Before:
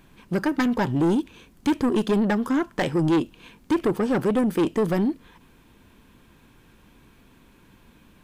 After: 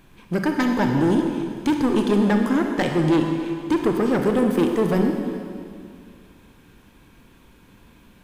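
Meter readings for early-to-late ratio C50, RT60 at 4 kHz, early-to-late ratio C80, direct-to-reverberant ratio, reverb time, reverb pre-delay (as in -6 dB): 4.0 dB, 2.1 s, 5.0 dB, 3.0 dB, 2.3 s, 29 ms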